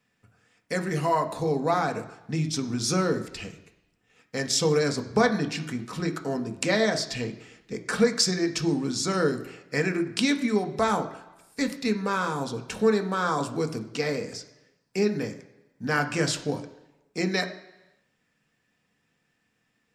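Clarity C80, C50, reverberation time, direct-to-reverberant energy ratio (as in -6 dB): 15.0 dB, 12.5 dB, 1.0 s, 5.0 dB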